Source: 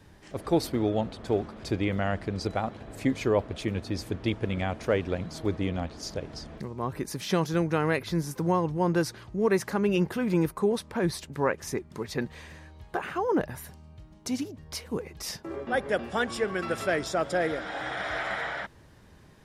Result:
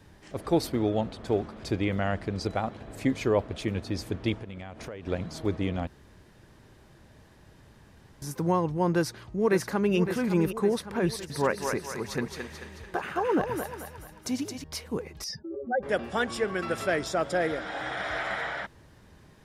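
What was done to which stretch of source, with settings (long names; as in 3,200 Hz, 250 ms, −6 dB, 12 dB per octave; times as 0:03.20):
0:04.36–0:05.07: downward compressor 8 to 1, threshold −36 dBFS
0:05.87–0:08.22: fill with room tone
0:08.94–0:09.96: delay throw 560 ms, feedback 60%, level −9.5 dB
0:11.08–0:14.64: feedback echo with a high-pass in the loop 219 ms, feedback 51%, high-pass 500 Hz, level −3.5 dB
0:15.24–0:15.83: expanding power law on the bin magnitudes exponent 2.5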